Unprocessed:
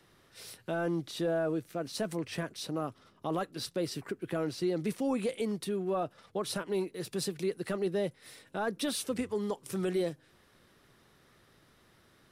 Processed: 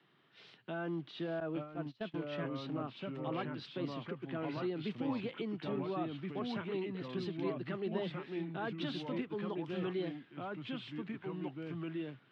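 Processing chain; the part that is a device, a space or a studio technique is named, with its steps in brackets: high-pass 130 Hz 24 dB/octave; guitar cabinet (cabinet simulation 110–3600 Hz, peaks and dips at 140 Hz +3 dB, 530 Hz -8 dB, 3.1 kHz +5 dB); ever faster or slower copies 780 ms, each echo -2 st, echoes 2; 1.40–2.44 s: gate -34 dBFS, range -22 dB; trim -5.5 dB

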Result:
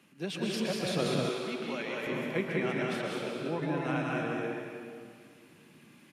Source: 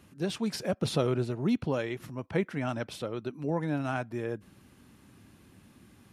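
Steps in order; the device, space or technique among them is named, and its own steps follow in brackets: stadium PA (high-pass 150 Hz 24 dB/octave; peaking EQ 2.5 kHz +7 dB 0.92 oct; loudspeakers at several distances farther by 66 m -3 dB, 89 m -9 dB; reverberation RT60 2.0 s, pre-delay 114 ms, DRR 0 dB); 1.29–2.07 s: high-pass 680 Hz 6 dB/octave; trim -5 dB

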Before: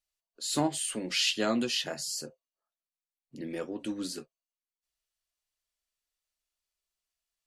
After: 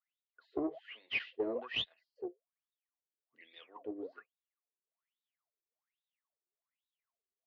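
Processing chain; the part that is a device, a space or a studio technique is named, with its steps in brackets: 1.19–2.16 s: gate -32 dBFS, range -14 dB; wah-wah guitar rig (wah-wah 1.2 Hz 350–3800 Hz, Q 18; valve stage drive 37 dB, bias 0.5; cabinet simulation 79–3700 Hz, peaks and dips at 180 Hz -6 dB, 450 Hz +7 dB, 690 Hz +7 dB, 1.1 kHz +9 dB, 2 kHz +7 dB); trim +10.5 dB

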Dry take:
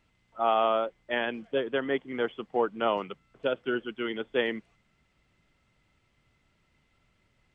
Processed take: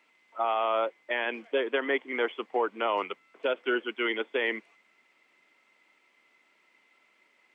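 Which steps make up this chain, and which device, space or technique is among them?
laptop speaker (high-pass 290 Hz 24 dB/octave; peaking EQ 990 Hz +5 dB 0.45 oct; peaking EQ 2.2 kHz +8.5 dB 0.54 oct; peak limiter -20 dBFS, peak gain reduction 9 dB); trim +2.5 dB

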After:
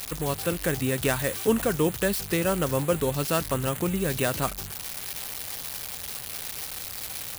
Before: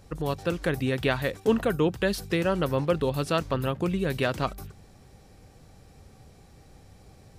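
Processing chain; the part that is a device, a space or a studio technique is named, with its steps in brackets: budget class-D amplifier (dead-time distortion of 0.087 ms; zero-crossing glitches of -16.5 dBFS)

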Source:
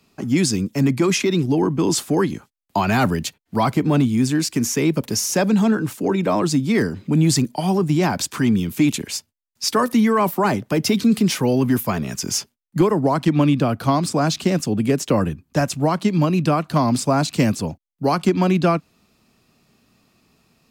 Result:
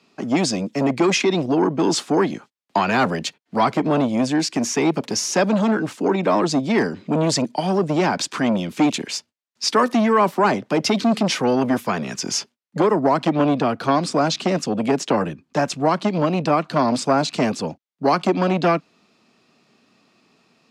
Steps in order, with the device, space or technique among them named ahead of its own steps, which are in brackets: public-address speaker with an overloaded transformer (transformer saturation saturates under 450 Hz; band-pass 220–5700 Hz); trim +3 dB

